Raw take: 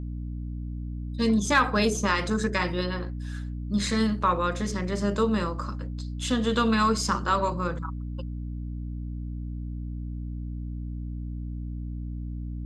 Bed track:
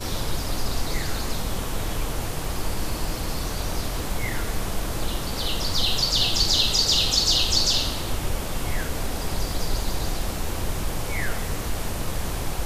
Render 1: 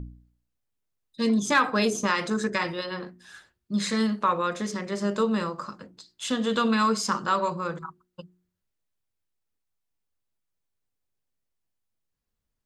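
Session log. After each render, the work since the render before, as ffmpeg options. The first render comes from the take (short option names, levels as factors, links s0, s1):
-af "bandreject=f=60:t=h:w=4,bandreject=f=120:t=h:w=4,bandreject=f=180:t=h:w=4,bandreject=f=240:t=h:w=4,bandreject=f=300:t=h:w=4,bandreject=f=360:t=h:w=4"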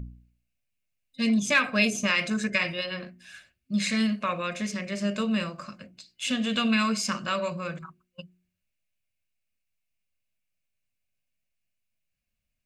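-af "superequalizer=6b=0.447:7b=0.355:9b=0.282:10b=0.501:12b=2.82"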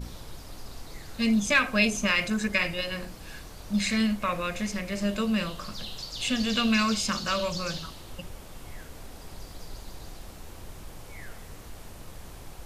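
-filter_complex "[1:a]volume=0.158[s0];[0:a][s0]amix=inputs=2:normalize=0"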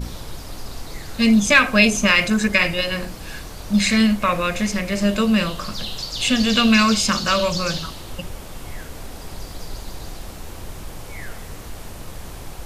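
-af "volume=2.82,alimiter=limit=0.891:level=0:latency=1"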